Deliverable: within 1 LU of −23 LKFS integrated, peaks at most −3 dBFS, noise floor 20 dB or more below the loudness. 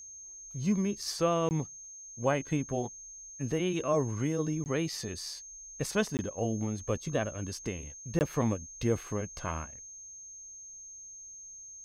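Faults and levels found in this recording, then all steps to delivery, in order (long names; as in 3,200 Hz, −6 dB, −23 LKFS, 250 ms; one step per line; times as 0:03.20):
number of dropouts 4; longest dropout 19 ms; interfering tone 6,400 Hz; level of the tone −45 dBFS; integrated loudness −33.0 LKFS; sample peak −14.5 dBFS; target loudness −23.0 LKFS
→ repair the gap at 0:01.49/0:04.64/0:06.17/0:08.19, 19 ms
notch filter 6,400 Hz, Q 30
level +10 dB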